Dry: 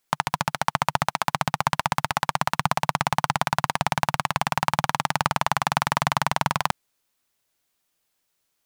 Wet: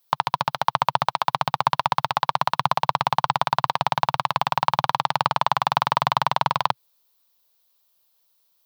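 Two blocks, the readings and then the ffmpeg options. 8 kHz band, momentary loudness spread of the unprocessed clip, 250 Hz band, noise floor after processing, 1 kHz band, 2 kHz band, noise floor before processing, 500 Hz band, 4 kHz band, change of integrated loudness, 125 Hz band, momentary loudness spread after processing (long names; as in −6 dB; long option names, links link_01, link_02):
−9.5 dB, 2 LU, −5.0 dB, −70 dBFS, +3.5 dB, −2.5 dB, −75 dBFS, +1.5 dB, +1.5 dB, +2.0 dB, −2.5 dB, 2 LU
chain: -filter_complex "[0:a]crystalizer=i=9:c=0,equalizer=frequency=125:width_type=o:width=1:gain=11,equalizer=frequency=500:width_type=o:width=1:gain=11,equalizer=frequency=1000:width_type=o:width=1:gain=11,equalizer=frequency=2000:width_type=o:width=1:gain=-4,equalizer=frequency=4000:width_type=o:width=1:gain=7,equalizer=frequency=8000:width_type=o:width=1:gain=-10,acrossover=split=4300[link_01][link_02];[link_02]acompressor=threshold=-24dB:ratio=4:attack=1:release=60[link_03];[link_01][link_03]amix=inputs=2:normalize=0,volume=-12.5dB"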